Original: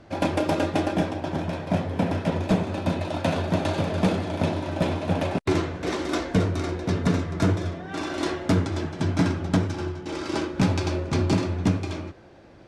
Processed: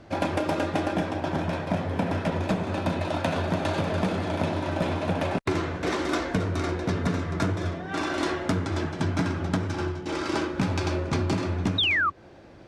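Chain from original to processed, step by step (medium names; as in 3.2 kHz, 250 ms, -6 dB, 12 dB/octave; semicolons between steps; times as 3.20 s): dynamic bell 1.4 kHz, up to +4 dB, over -41 dBFS, Q 0.86; in parallel at -8 dB: one-sided clip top -21.5 dBFS; on the sum: painted sound fall, 11.78–12.10 s, 1.1–3.9 kHz -13 dBFS; compression, threshold -20 dBFS, peak gain reduction 8.5 dB; trim -2 dB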